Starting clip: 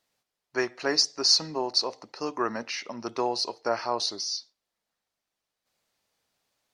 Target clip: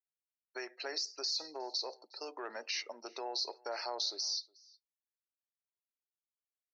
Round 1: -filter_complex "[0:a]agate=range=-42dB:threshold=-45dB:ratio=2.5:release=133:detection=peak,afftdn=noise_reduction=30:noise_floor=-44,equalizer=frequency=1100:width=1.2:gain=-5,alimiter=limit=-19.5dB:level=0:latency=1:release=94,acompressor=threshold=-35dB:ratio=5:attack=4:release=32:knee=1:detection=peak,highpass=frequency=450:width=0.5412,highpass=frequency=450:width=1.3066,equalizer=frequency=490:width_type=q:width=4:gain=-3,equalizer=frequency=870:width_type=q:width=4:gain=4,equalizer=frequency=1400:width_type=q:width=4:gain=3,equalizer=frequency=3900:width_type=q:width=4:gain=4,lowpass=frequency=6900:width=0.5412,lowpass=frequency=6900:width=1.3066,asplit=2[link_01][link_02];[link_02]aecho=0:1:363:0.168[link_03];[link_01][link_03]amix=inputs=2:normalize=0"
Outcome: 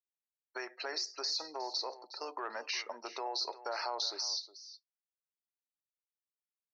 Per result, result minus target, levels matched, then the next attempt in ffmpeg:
echo-to-direct +10.5 dB; 1,000 Hz band +4.0 dB
-filter_complex "[0:a]agate=range=-42dB:threshold=-45dB:ratio=2.5:release=133:detection=peak,afftdn=noise_reduction=30:noise_floor=-44,equalizer=frequency=1100:width=1.2:gain=-5,alimiter=limit=-19.5dB:level=0:latency=1:release=94,acompressor=threshold=-35dB:ratio=5:attack=4:release=32:knee=1:detection=peak,highpass=frequency=450:width=0.5412,highpass=frequency=450:width=1.3066,equalizer=frequency=490:width_type=q:width=4:gain=-3,equalizer=frequency=870:width_type=q:width=4:gain=4,equalizer=frequency=1400:width_type=q:width=4:gain=3,equalizer=frequency=3900:width_type=q:width=4:gain=4,lowpass=frequency=6900:width=0.5412,lowpass=frequency=6900:width=1.3066,asplit=2[link_01][link_02];[link_02]aecho=0:1:363:0.0501[link_03];[link_01][link_03]amix=inputs=2:normalize=0"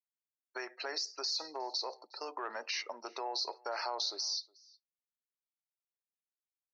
1,000 Hz band +4.0 dB
-filter_complex "[0:a]agate=range=-42dB:threshold=-45dB:ratio=2.5:release=133:detection=peak,afftdn=noise_reduction=30:noise_floor=-44,equalizer=frequency=1100:width=1.2:gain=-14.5,alimiter=limit=-19.5dB:level=0:latency=1:release=94,acompressor=threshold=-35dB:ratio=5:attack=4:release=32:knee=1:detection=peak,highpass=frequency=450:width=0.5412,highpass=frequency=450:width=1.3066,equalizer=frequency=490:width_type=q:width=4:gain=-3,equalizer=frequency=870:width_type=q:width=4:gain=4,equalizer=frequency=1400:width_type=q:width=4:gain=3,equalizer=frequency=3900:width_type=q:width=4:gain=4,lowpass=frequency=6900:width=0.5412,lowpass=frequency=6900:width=1.3066,asplit=2[link_01][link_02];[link_02]aecho=0:1:363:0.0501[link_03];[link_01][link_03]amix=inputs=2:normalize=0"

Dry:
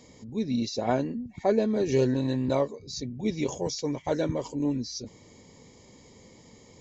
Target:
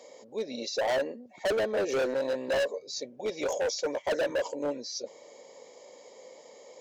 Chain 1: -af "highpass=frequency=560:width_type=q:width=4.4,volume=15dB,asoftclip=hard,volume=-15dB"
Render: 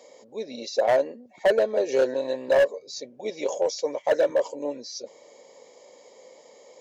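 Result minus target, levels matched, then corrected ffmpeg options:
gain into a clipping stage and back: distortion −7 dB
-af "highpass=frequency=560:width_type=q:width=4.4,volume=25dB,asoftclip=hard,volume=-25dB"

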